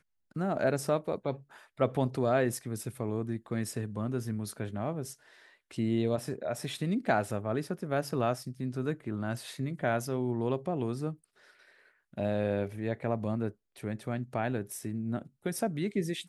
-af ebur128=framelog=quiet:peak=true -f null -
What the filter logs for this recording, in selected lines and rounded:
Integrated loudness:
  I:         -33.1 LUFS
  Threshold: -43.5 LUFS
Loudness range:
  LRA:         3.1 LU
  Threshold: -53.6 LUFS
  LRA low:   -35.2 LUFS
  LRA high:  -32.1 LUFS
True peak:
  Peak:      -12.4 dBFS